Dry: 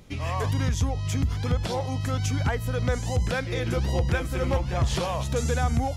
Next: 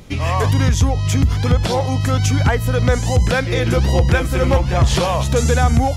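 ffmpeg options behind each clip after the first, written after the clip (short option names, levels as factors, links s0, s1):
-af "acontrast=71,volume=1.5"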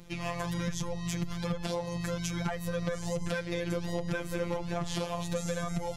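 -af "afftfilt=real='hypot(re,im)*cos(PI*b)':imag='0':win_size=1024:overlap=0.75,acompressor=threshold=0.0891:ratio=4,volume=0.422"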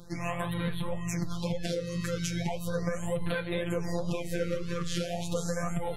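-af "flanger=delay=7.4:depth=9.3:regen=60:speed=1.9:shape=sinusoidal,afftfilt=real='re*(1-between(b*sr/1024,730*pow(6400/730,0.5+0.5*sin(2*PI*0.37*pts/sr))/1.41,730*pow(6400/730,0.5+0.5*sin(2*PI*0.37*pts/sr))*1.41))':imag='im*(1-between(b*sr/1024,730*pow(6400/730,0.5+0.5*sin(2*PI*0.37*pts/sr))/1.41,730*pow(6400/730,0.5+0.5*sin(2*PI*0.37*pts/sr))*1.41))':win_size=1024:overlap=0.75,volume=2"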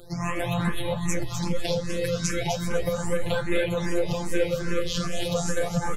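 -filter_complex "[0:a]asplit=2[s0][s1];[s1]aecho=0:1:252|504|756|1008:0.631|0.196|0.0606|0.0188[s2];[s0][s2]amix=inputs=2:normalize=0,asplit=2[s3][s4];[s4]afreqshift=2.5[s5];[s3][s5]amix=inputs=2:normalize=1,volume=2.51"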